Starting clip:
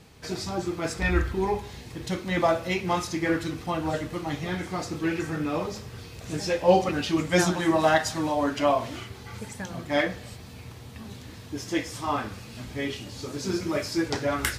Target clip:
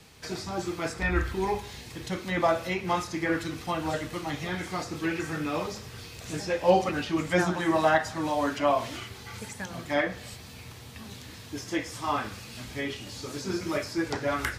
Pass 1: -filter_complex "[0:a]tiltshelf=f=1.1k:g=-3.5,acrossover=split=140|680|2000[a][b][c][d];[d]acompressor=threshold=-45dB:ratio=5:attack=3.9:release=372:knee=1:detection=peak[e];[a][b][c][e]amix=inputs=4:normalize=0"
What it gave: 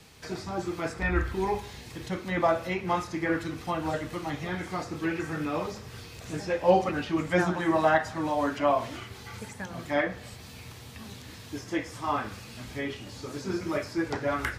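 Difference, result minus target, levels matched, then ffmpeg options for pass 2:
compressor: peak gain reduction +5.5 dB
-filter_complex "[0:a]tiltshelf=f=1.1k:g=-3.5,acrossover=split=140|680|2000[a][b][c][d];[d]acompressor=threshold=-38dB:ratio=5:attack=3.9:release=372:knee=1:detection=peak[e];[a][b][c][e]amix=inputs=4:normalize=0"

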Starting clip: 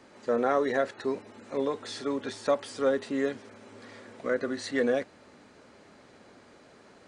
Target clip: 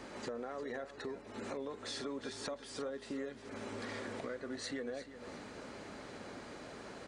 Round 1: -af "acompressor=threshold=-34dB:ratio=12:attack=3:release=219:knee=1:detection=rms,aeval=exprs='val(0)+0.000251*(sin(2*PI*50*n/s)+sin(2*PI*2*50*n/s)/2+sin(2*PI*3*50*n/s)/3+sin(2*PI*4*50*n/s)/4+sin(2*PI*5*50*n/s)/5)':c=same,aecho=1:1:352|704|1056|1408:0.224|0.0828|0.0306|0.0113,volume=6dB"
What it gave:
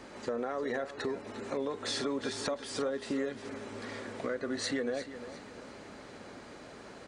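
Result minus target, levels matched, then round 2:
compressor: peak gain reduction -8 dB
-af "acompressor=threshold=-42.5dB:ratio=12:attack=3:release=219:knee=1:detection=rms,aeval=exprs='val(0)+0.000251*(sin(2*PI*50*n/s)+sin(2*PI*2*50*n/s)/2+sin(2*PI*3*50*n/s)/3+sin(2*PI*4*50*n/s)/4+sin(2*PI*5*50*n/s)/5)':c=same,aecho=1:1:352|704|1056|1408:0.224|0.0828|0.0306|0.0113,volume=6dB"

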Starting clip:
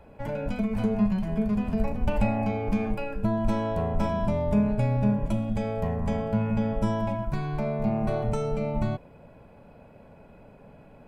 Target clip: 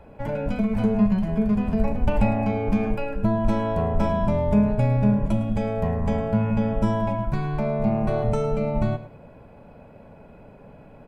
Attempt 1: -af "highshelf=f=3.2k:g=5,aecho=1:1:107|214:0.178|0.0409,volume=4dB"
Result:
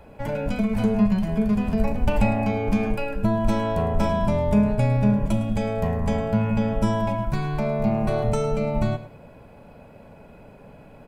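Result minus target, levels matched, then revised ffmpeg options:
8000 Hz band +8.5 dB
-af "highshelf=f=3.2k:g=-5,aecho=1:1:107|214:0.178|0.0409,volume=4dB"

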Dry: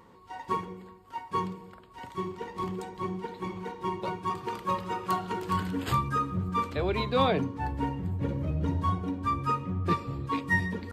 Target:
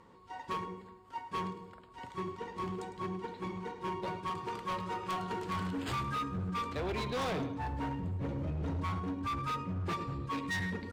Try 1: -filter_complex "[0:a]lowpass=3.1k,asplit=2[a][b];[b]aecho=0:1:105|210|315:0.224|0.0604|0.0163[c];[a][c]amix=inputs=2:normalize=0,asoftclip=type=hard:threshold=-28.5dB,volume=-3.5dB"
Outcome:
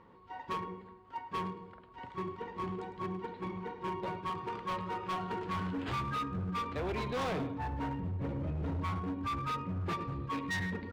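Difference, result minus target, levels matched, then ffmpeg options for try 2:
8000 Hz band -3.0 dB
-filter_complex "[0:a]lowpass=9.6k,asplit=2[a][b];[b]aecho=0:1:105|210|315:0.224|0.0604|0.0163[c];[a][c]amix=inputs=2:normalize=0,asoftclip=type=hard:threshold=-28.5dB,volume=-3.5dB"

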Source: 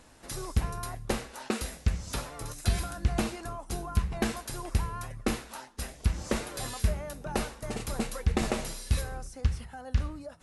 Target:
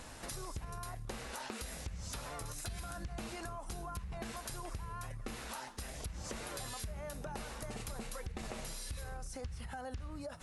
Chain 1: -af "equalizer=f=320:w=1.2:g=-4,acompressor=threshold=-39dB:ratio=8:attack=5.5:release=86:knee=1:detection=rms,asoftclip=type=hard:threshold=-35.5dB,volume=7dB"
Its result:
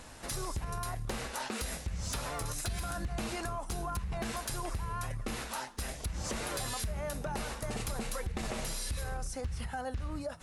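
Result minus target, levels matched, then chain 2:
compressor: peak gain reduction -7 dB
-af "equalizer=f=320:w=1.2:g=-4,acompressor=threshold=-47dB:ratio=8:attack=5.5:release=86:knee=1:detection=rms,asoftclip=type=hard:threshold=-35.5dB,volume=7dB"

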